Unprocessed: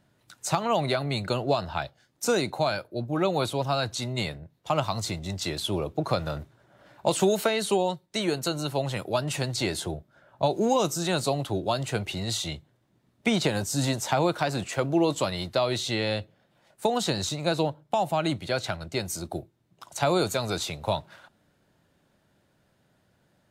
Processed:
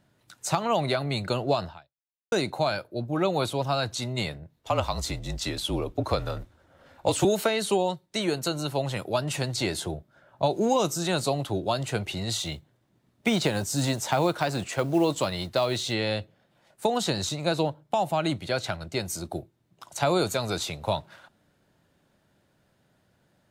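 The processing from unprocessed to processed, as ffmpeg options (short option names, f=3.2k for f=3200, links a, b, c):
-filter_complex "[0:a]asettb=1/sr,asplit=3[a][b][c];[a]atrim=end=4.564[d];[b]atrim=start=4.56:end=7.25,asetpts=PTS-STARTPTS,afade=t=in:d=0.004:c=qsin,afade=t=out:st=2.686:d=0.004:c=qsin,afreqshift=-39[e];[c]atrim=start=7.246[f];[d][e]acrossfade=d=0.004:c1=hsin:c2=qsin[g];[g][f]acrossfade=d=0.004:c1=qsin:c2=hsin,asettb=1/sr,asplit=3[h][i][j];[h]atrim=end=12.384[k];[i]atrim=start=12.38:end=15.93,asetpts=PTS-STARTPTS,afade=t=in:d=0.004:c=qsin,afade=t=out:st=3.546:d=0.004:c=qsin,acrusher=bits=7:mode=log:mix=0:aa=0.000001[l];[j]atrim=start=15.926[m];[k][l]acrossfade=d=0.004:c1=hsin:c2=qsin[n];[n][m]acrossfade=d=0.004:c1=qsin:c2=hsin,asplit=2[o][p];[o]atrim=end=2.32,asetpts=PTS-STARTPTS,afade=t=out:st=1.66:d=0.66:c=exp[q];[p]atrim=start=2.32,asetpts=PTS-STARTPTS,afade=t=in:d=0.004:c=hsin[r];[q][r]concat=n=2:v=0:a=1"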